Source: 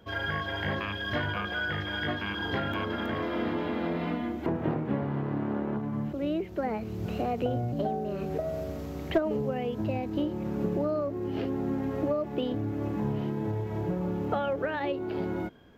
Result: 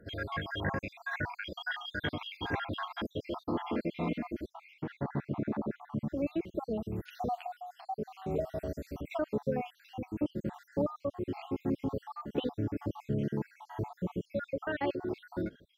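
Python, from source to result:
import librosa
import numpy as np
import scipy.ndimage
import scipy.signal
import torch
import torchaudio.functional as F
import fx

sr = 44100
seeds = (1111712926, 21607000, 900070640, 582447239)

y = fx.spec_dropout(x, sr, seeds[0], share_pct=65)
y = fx.peak_eq(y, sr, hz=760.0, db=-6.5, octaves=1.6, at=(9.67, 10.17))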